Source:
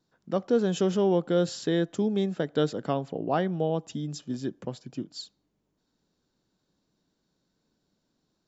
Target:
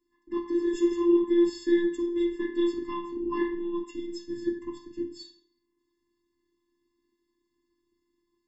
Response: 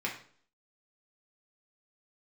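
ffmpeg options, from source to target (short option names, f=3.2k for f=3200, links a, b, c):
-filter_complex "[1:a]atrim=start_sample=2205,asetrate=41454,aresample=44100[a];[0:a][a]afir=irnorm=-1:irlink=0,afftfilt=real='hypot(re,im)*cos(PI*b)':imag='0':win_size=512:overlap=0.75,afftfilt=real='re*eq(mod(floor(b*sr/1024/420),2),0)':imag='im*eq(mod(floor(b*sr/1024/420),2),0)':win_size=1024:overlap=0.75"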